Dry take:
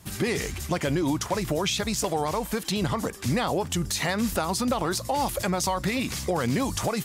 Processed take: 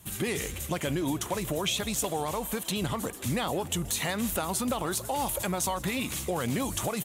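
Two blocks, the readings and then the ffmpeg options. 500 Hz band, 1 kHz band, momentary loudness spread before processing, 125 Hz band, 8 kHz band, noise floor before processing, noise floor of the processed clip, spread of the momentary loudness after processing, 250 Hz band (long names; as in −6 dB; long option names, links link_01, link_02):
−4.5 dB, −4.5 dB, 3 LU, −4.5 dB, −0.5 dB, −38 dBFS, −40 dBFS, 3 LU, −4.5 dB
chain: -filter_complex "[0:a]aexciter=amount=1.3:drive=4.4:freq=2700,asplit=2[link_01][link_02];[link_02]asplit=6[link_03][link_04][link_05][link_06][link_07][link_08];[link_03]adelay=161,afreqshift=65,volume=-20dB[link_09];[link_04]adelay=322,afreqshift=130,volume=-23.7dB[link_10];[link_05]adelay=483,afreqshift=195,volume=-27.5dB[link_11];[link_06]adelay=644,afreqshift=260,volume=-31.2dB[link_12];[link_07]adelay=805,afreqshift=325,volume=-35dB[link_13];[link_08]adelay=966,afreqshift=390,volume=-38.7dB[link_14];[link_09][link_10][link_11][link_12][link_13][link_14]amix=inputs=6:normalize=0[link_15];[link_01][link_15]amix=inputs=2:normalize=0,volume=-4.5dB"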